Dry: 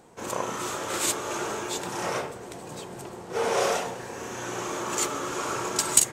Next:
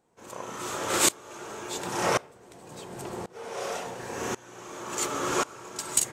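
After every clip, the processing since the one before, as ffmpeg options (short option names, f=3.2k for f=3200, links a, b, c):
-af "aeval=exprs='val(0)*pow(10,-24*if(lt(mod(-0.92*n/s,1),2*abs(-0.92)/1000),1-mod(-0.92*n/s,1)/(2*abs(-0.92)/1000),(mod(-0.92*n/s,1)-2*abs(-0.92)/1000)/(1-2*abs(-0.92)/1000))/20)':c=same,volume=6.5dB"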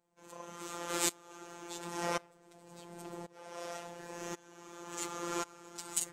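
-af "afftfilt=real='hypot(re,im)*cos(PI*b)':imag='0':win_size=1024:overlap=0.75,volume=-6.5dB"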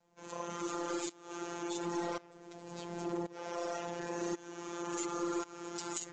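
-af "adynamicequalizer=threshold=0.002:dfrequency=330:dqfactor=4:tfrequency=330:tqfactor=4:attack=5:release=100:ratio=0.375:range=3:mode=boostabove:tftype=bell,acompressor=threshold=-36dB:ratio=16,aresample=16000,aeval=exprs='clip(val(0),-1,0.02)':c=same,aresample=44100,volume=7dB"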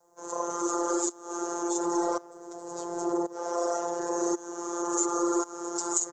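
-af "firequalizer=gain_entry='entry(130,0);entry(230,-12);entry(350,10);entry(720,10);entry(1200,10);entry(2400,-13);entry(6500,14)':delay=0.05:min_phase=1"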